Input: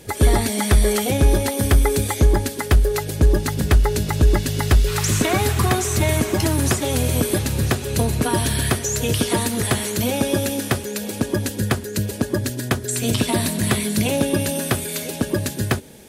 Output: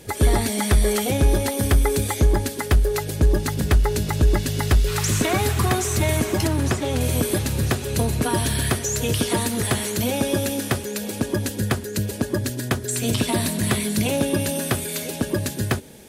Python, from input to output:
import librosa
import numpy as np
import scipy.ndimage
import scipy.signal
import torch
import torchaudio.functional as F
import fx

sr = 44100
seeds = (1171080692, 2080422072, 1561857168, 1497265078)

p1 = fx.lowpass(x, sr, hz=3600.0, slope=6, at=(6.47, 7.01))
p2 = 10.0 ** (-21.5 / 20.0) * np.tanh(p1 / 10.0 ** (-21.5 / 20.0))
p3 = p1 + F.gain(torch.from_numpy(p2), -10.5).numpy()
y = F.gain(torch.from_numpy(p3), -3.0).numpy()